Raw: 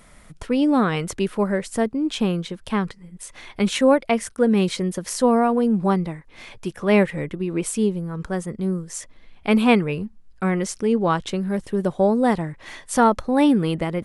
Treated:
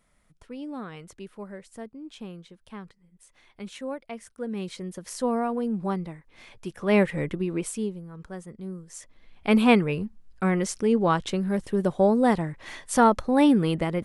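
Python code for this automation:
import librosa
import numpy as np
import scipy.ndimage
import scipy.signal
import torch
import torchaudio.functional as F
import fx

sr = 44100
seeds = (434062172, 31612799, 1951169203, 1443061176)

y = fx.gain(x, sr, db=fx.line((4.06, -18.0), (5.23, -8.5), (6.52, -8.5), (7.31, 0.0), (8.04, -12.5), (8.77, -12.5), (9.54, -2.0)))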